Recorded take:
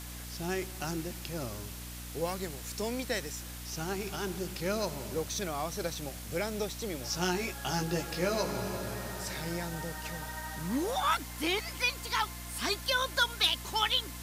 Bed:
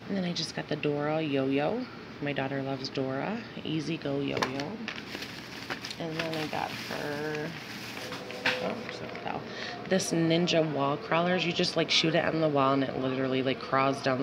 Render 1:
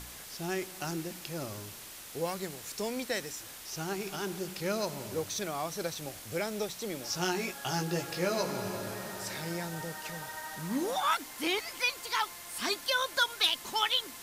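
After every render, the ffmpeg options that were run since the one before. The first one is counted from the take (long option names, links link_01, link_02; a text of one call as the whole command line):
ffmpeg -i in.wav -af "bandreject=frequency=60:width_type=h:width=4,bandreject=frequency=120:width_type=h:width=4,bandreject=frequency=180:width_type=h:width=4,bandreject=frequency=240:width_type=h:width=4,bandreject=frequency=300:width_type=h:width=4" out.wav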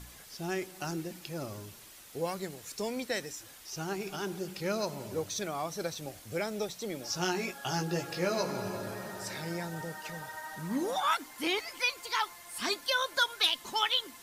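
ffmpeg -i in.wav -af "afftdn=noise_reduction=7:noise_floor=-47" out.wav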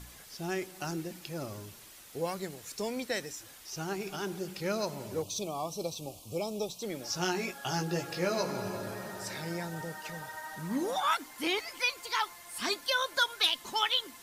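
ffmpeg -i in.wav -filter_complex "[0:a]asettb=1/sr,asplit=3[link_01][link_02][link_03];[link_01]atrim=end=5.224[link_04];[link_02]atrim=start=5.22:end=6.83,asetpts=PTS-STARTPTS,afade=type=in:duration=0.004:curve=qsin,afade=type=out:start_time=1.606:duration=0.004:curve=qsin,asuperstop=centerf=1700:order=8:qfactor=1.3[link_05];[link_03]atrim=start=6.826[link_06];[link_04][link_05]acrossfade=duration=0.004:curve1=hsin:curve2=qsin[link_07];[link_07][link_06]acrossfade=duration=0.004:curve1=qsin:curve2=hsin" out.wav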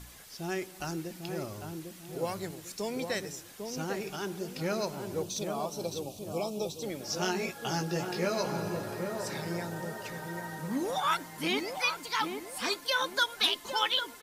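ffmpeg -i in.wav -filter_complex "[0:a]asplit=2[link_01][link_02];[link_02]adelay=800,lowpass=frequency=870:poles=1,volume=-4dB,asplit=2[link_03][link_04];[link_04]adelay=800,lowpass=frequency=870:poles=1,volume=0.41,asplit=2[link_05][link_06];[link_06]adelay=800,lowpass=frequency=870:poles=1,volume=0.41,asplit=2[link_07][link_08];[link_08]adelay=800,lowpass=frequency=870:poles=1,volume=0.41,asplit=2[link_09][link_10];[link_10]adelay=800,lowpass=frequency=870:poles=1,volume=0.41[link_11];[link_01][link_03][link_05][link_07][link_09][link_11]amix=inputs=6:normalize=0" out.wav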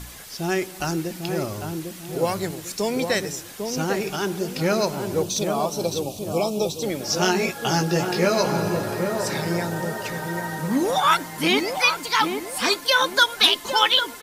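ffmpeg -i in.wav -af "volume=10.5dB" out.wav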